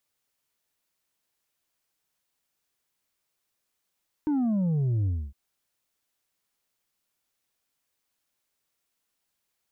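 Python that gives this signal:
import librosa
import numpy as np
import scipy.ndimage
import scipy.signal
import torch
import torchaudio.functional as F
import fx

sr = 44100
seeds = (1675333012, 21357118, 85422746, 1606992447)

y = fx.sub_drop(sr, level_db=-23.0, start_hz=310.0, length_s=1.06, drive_db=4.0, fade_s=0.27, end_hz=65.0)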